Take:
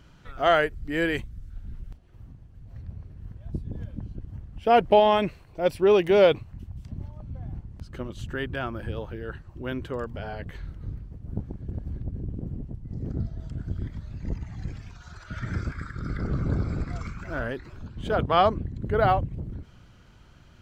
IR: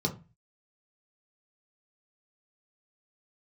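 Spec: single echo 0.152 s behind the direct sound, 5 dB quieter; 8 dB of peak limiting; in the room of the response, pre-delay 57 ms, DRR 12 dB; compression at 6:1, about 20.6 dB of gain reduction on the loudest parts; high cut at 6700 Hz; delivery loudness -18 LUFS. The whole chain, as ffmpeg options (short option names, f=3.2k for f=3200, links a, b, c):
-filter_complex "[0:a]lowpass=6.7k,acompressor=threshold=-37dB:ratio=6,alimiter=level_in=8.5dB:limit=-24dB:level=0:latency=1,volume=-8.5dB,aecho=1:1:152:0.562,asplit=2[a][b];[1:a]atrim=start_sample=2205,adelay=57[c];[b][c]afir=irnorm=-1:irlink=0,volume=-18.5dB[d];[a][d]amix=inputs=2:normalize=0,volume=23.5dB"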